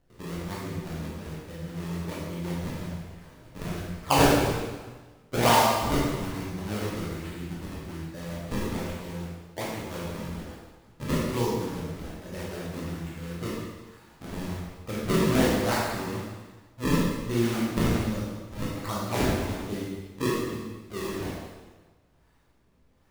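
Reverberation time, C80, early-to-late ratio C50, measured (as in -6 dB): 1.3 s, 1.5 dB, -1.0 dB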